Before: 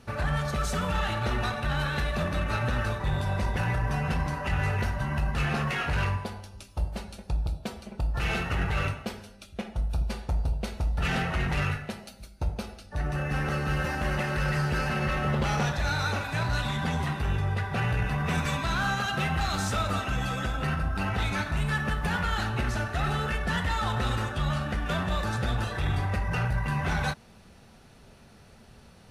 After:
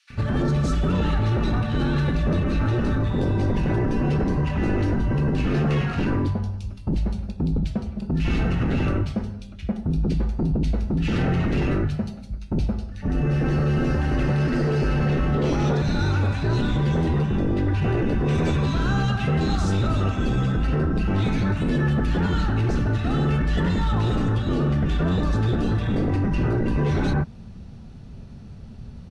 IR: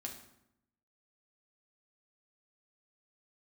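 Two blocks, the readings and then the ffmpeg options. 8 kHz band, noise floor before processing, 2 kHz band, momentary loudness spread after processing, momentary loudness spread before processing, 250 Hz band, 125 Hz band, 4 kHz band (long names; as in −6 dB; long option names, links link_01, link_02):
can't be measured, −53 dBFS, −2.5 dB, 7 LU, 7 LU, +11.0 dB, +7.0 dB, −1.0 dB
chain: -filter_complex "[0:a]lowpass=6500,acrossover=split=250|1200|2200[link_01][link_02][link_03][link_04];[link_01]aeval=exprs='0.119*sin(PI/2*3.98*val(0)/0.119)':channel_layout=same[link_05];[link_05][link_02][link_03][link_04]amix=inputs=4:normalize=0,acrossover=split=1900[link_06][link_07];[link_06]adelay=100[link_08];[link_08][link_07]amix=inputs=2:normalize=0"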